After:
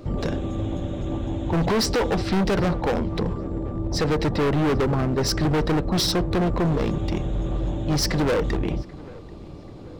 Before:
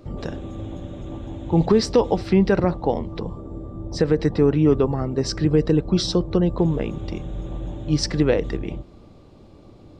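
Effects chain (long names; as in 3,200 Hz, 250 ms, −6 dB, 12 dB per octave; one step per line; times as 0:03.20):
gain into a clipping stage and back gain 24.5 dB
on a send: feedback echo with a low-pass in the loop 786 ms, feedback 53%, low-pass 2,100 Hz, level −20.5 dB
on the sum: level +5.5 dB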